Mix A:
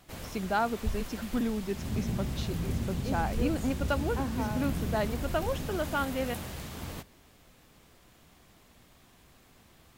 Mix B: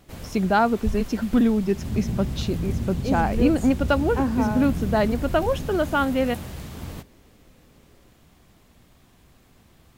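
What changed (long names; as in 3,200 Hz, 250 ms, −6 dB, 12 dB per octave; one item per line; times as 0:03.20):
speech +7.5 dB
master: add low-shelf EQ 380 Hz +6 dB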